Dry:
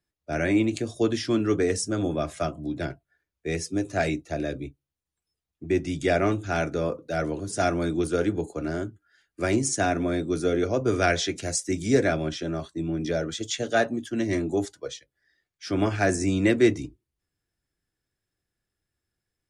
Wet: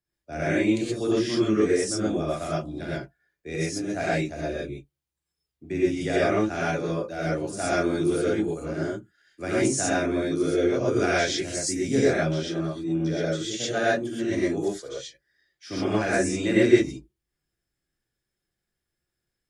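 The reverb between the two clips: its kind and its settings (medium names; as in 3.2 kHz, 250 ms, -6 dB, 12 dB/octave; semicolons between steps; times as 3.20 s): gated-style reverb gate 150 ms rising, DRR -7.5 dB; trim -7.5 dB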